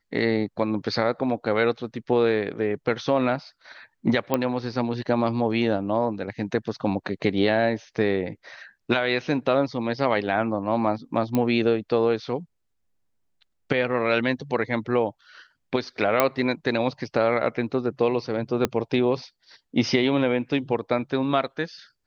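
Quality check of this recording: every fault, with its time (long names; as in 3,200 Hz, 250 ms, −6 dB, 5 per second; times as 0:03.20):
0:04.34: click −9 dBFS
0:11.35: click −11 dBFS
0:16.20: click −4 dBFS
0:18.65: click −8 dBFS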